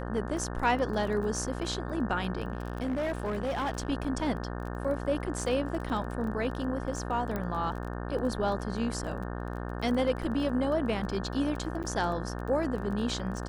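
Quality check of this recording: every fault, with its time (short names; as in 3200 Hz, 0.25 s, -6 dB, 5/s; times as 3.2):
buzz 60 Hz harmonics 30 -36 dBFS
crackle 19/s -36 dBFS
2.52–3.9 clipped -27 dBFS
7.36 pop -20 dBFS
11.83–11.84 gap 8.9 ms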